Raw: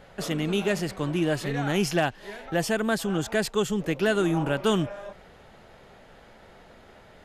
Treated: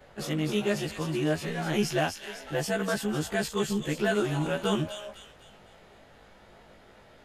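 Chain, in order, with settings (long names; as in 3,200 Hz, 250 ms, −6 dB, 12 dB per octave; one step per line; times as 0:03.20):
every overlapping window played backwards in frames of 39 ms
delay with a high-pass on its return 252 ms, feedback 42%, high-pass 2,600 Hz, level −4.5 dB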